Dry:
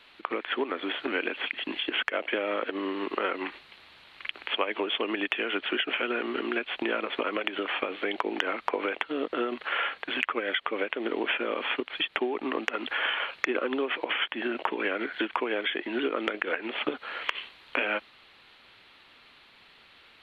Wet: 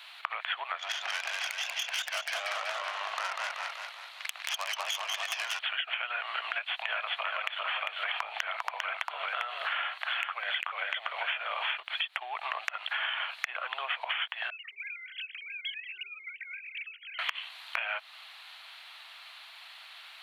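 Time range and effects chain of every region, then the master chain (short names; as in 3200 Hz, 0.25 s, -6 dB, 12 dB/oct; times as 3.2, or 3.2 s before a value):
0.78–5.59 tube stage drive 26 dB, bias 0.8 + warbling echo 0.19 s, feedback 52%, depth 125 cents, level -3 dB
6.52–11.78 steep high-pass 390 Hz + echo 0.399 s -3.5 dB
14.5–17.19 sine-wave speech + elliptic band-stop 270–2300 Hz, stop band 60 dB + compressor 2:1, threshold -45 dBFS
whole clip: Chebyshev high-pass 660 Hz, order 5; high shelf 4900 Hz +10.5 dB; compressor 6:1, threshold -35 dBFS; gain +5 dB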